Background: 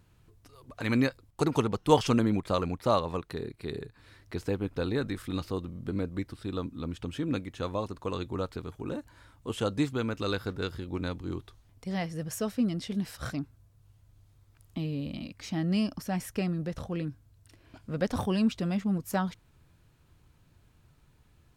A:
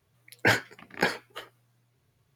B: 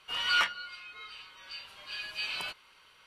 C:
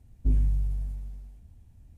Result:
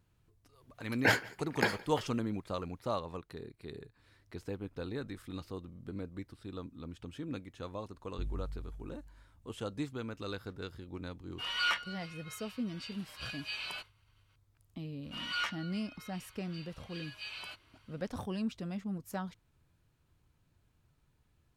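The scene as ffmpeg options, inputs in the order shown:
ffmpeg -i bed.wav -i cue0.wav -i cue1.wav -i cue2.wav -filter_complex "[2:a]asplit=2[link_01][link_02];[0:a]volume=-9.5dB[link_03];[1:a]aecho=1:1:168:0.0708[link_04];[link_01]agate=range=-33dB:threshold=-53dB:ratio=3:release=100:detection=peak[link_05];[link_04]atrim=end=2.35,asetpts=PTS-STARTPTS,volume=-4.5dB,afade=type=in:duration=0.004:curve=hsin,afade=type=out:start_time=2.346:duration=0.004:curve=hsin,adelay=600[link_06];[3:a]atrim=end=1.97,asetpts=PTS-STARTPTS,volume=-15.5dB,afade=type=in:duration=0.004:curve=hsin,afade=type=out:start_time=1.966:duration=0.004:curve=hsin,adelay=7930[link_07];[link_05]atrim=end=3.06,asetpts=PTS-STARTPTS,volume=-4.5dB,afade=type=in:duration=0.004:curve=hsin,afade=type=out:start_time=3.056:duration=0.004:curve=hsin,adelay=498330S[link_08];[link_02]atrim=end=3.06,asetpts=PTS-STARTPTS,volume=-8.5dB,afade=type=in:duration=0.004:curve=hsin,afade=type=out:start_time=3.056:duration=0.004:curve=hsin,adelay=15030[link_09];[link_03][link_06][link_07][link_08][link_09]amix=inputs=5:normalize=0" out.wav

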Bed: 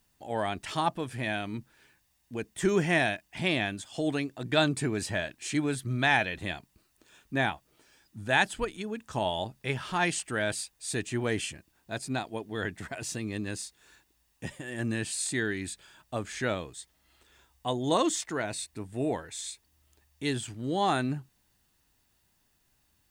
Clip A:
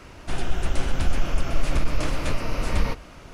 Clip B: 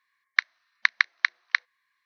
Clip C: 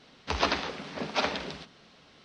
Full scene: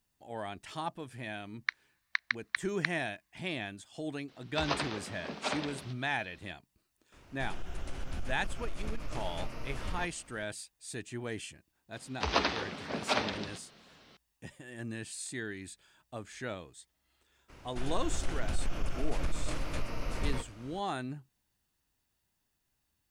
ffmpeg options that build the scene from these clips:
ffmpeg -i bed.wav -i cue0.wav -i cue1.wav -i cue2.wav -filter_complex "[3:a]asplit=2[link_01][link_02];[1:a]asplit=2[link_03][link_04];[0:a]volume=-9dB[link_05];[link_03]acompressor=threshold=-15dB:ratio=6:attack=3.2:release=140:knee=1:detection=peak[link_06];[link_04]acontrast=62[link_07];[2:a]atrim=end=2.05,asetpts=PTS-STARTPTS,volume=-10.5dB,afade=type=in:duration=0.004:curve=hsin,afade=type=out:start_time=2.046:duration=0.004:curve=hsin,adelay=1300[link_08];[link_01]atrim=end=2.24,asetpts=PTS-STARTPTS,volume=-6.5dB,afade=type=in:duration=0.004:curve=hsin,afade=type=out:start_time=2.236:duration=0.004:curve=hsin,adelay=4280[link_09];[link_06]atrim=end=3.33,asetpts=PTS-STARTPTS,volume=-14dB,afade=type=in:duration=0.004:curve=hsin,afade=type=out:start_time=3.326:duration=0.004:curve=hsin,adelay=7120[link_10];[link_02]atrim=end=2.24,asetpts=PTS-STARTPTS,volume=-2dB,afade=type=in:duration=0.004:curve=hsin,afade=type=out:start_time=2.236:duration=0.004:curve=hsin,adelay=11930[link_11];[link_07]atrim=end=3.33,asetpts=PTS-STARTPTS,volume=-16dB,afade=type=in:duration=0.02,afade=type=out:start_time=3.31:duration=0.02,adelay=770868S[link_12];[link_05][link_08][link_09][link_10][link_11][link_12]amix=inputs=6:normalize=0" out.wav

